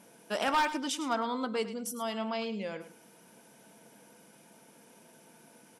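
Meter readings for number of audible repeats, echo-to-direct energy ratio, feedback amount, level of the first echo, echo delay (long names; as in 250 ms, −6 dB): 2, −13.0 dB, 16%, −13.0 dB, 105 ms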